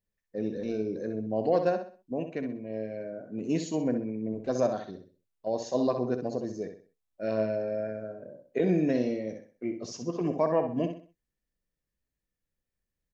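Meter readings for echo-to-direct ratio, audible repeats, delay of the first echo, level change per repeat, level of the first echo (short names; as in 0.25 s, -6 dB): -7.5 dB, 3, 64 ms, -9.5 dB, -8.0 dB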